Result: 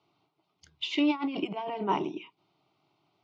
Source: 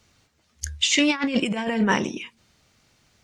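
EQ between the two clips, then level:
band-pass filter 230–6,400 Hz
high-frequency loss of the air 370 metres
phaser with its sweep stopped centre 340 Hz, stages 8
0.0 dB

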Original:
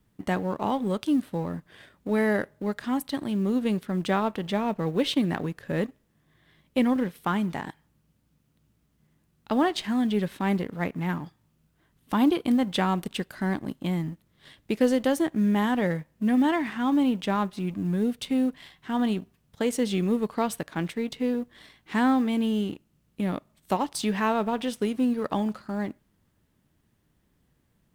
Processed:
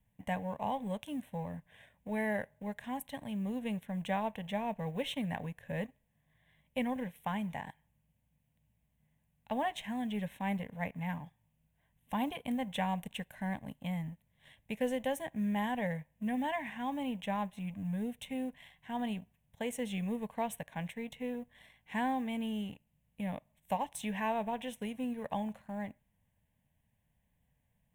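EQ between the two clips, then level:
phaser with its sweep stopped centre 1,300 Hz, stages 6
−5.5 dB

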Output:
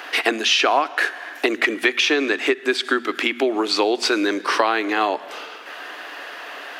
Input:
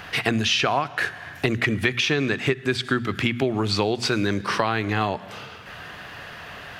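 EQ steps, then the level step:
elliptic high-pass filter 290 Hz, stop band 80 dB
+5.0 dB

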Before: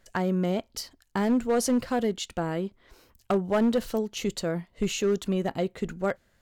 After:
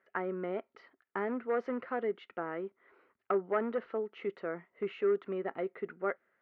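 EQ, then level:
loudspeaker in its box 320–2,300 Hz, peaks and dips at 400 Hz +7 dB, 1,300 Hz +9 dB, 2,000 Hz +6 dB
−8.5 dB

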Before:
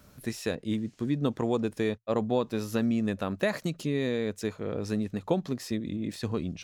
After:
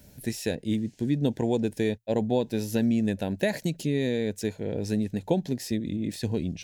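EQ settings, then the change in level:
Butterworth band-reject 1,200 Hz, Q 2
low-shelf EQ 370 Hz +4 dB
high-shelf EQ 5,900 Hz +7 dB
0.0 dB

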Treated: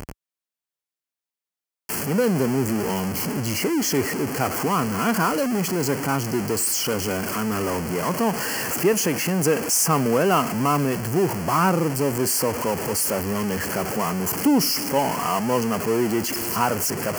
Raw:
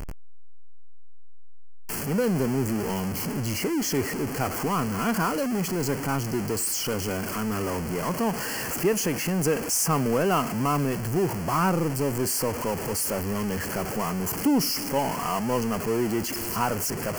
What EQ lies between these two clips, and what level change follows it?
high-pass filter 55 Hz
low-shelf EQ 120 Hz −5.5 dB
+4.5 dB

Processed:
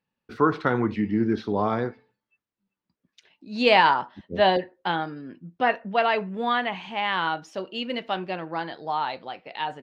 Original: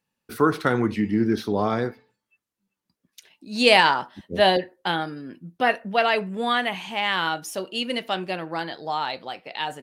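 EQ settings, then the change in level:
dynamic equaliser 970 Hz, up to +4 dB, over −36 dBFS, Q 2.5
high-frequency loss of the air 170 metres
−1.5 dB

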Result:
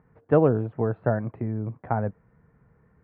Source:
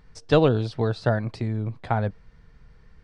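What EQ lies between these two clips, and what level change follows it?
high-pass filter 110 Hz 12 dB per octave
Bessel low-pass filter 1,200 Hz, order 8
0.0 dB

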